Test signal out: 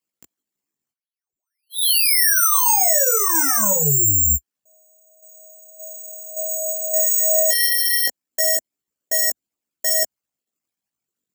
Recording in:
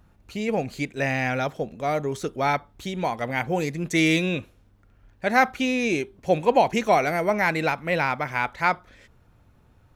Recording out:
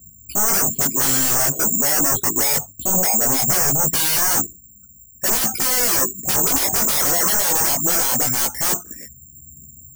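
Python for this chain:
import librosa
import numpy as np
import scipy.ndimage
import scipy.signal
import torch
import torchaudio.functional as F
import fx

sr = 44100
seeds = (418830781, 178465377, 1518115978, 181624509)

y = fx.envelope_sharpen(x, sr, power=3.0)
y = scipy.signal.sosfilt(scipy.signal.butter(4, 59.0, 'highpass', fs=sr, output='sos'), y)
y = fx.peak_eq(y, sr, hz=250.0, db=13.0, octaves=1.4)
y = fx.fold_sine(y, sr, drive_db=19, ceiling_db=-4.5)
y = (np.kron(scipy.signal.resample_poly(y, 1, 6), np.eye(6)[0]) * 6)[:len(y)]
y = fx.chorus_voices(y, sr, voices=2, hz=0.21, base_ms=18, depth_ms=4.2, mix_pct=45)
y = fx.dynamic_eq(y, sr, hz=2400.0, q=2.7, threshold_db=-25.0, ratio=4.0, max_db=-4)
y = y * 10.0 ** (-14.0 / 20.0)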